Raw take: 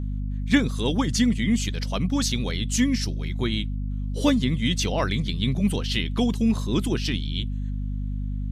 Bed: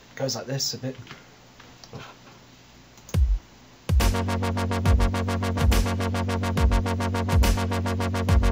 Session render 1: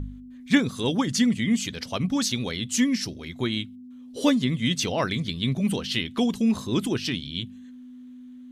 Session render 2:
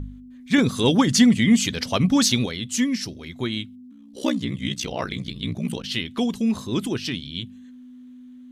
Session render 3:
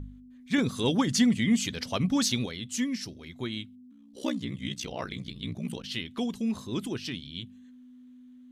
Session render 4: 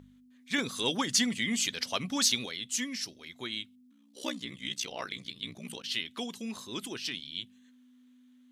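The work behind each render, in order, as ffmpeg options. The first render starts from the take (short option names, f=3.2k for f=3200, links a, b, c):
-af "bandreject=f=50:t=h:w=4,bandreject=f=100:t=h:w=4,bandreject=f=150:t=h:w=4,bandreject=f=200:t=h:w=4"
-filter_complex "[0:a]asettb=1/sr,asplit=3[a][b][c];[a]atrim=end=0.584[d];[b]atrim=start=0.58:end=2.46,asetpts=PTS-STARTPTS,afade=t=in:d=0.004:c=qsin,afade=t=out:st=1.876:d=0.004:c=qsin,acontrast=75[e];[c]atrim=start=2.456[f];[d][e]acrossfade=d=0.004:c1=hsin:c2=qsin[g];[g][f]acrossfade=d=0.004:c1=qsin:c2=hsin,asplit=3[h][i][j];[h]afade=t=out:st=3.9:d=0.02[k];[i]aeval=exprs='val(0)*sin(2*PI*31*n/s)':c=same,afade=t=in:st=3.9:d=0.02,afade=t=out:st=5.82:d=0.02[l];[j]afade=t=in:st=5.82:d=0.02[m];[k][l][m]amix=inputs=3:normalize=0"
-af "volume=-7.5dB"
-af "highpass=f=400:p=1,tiltshelf=f=1.3k:g=-3.5"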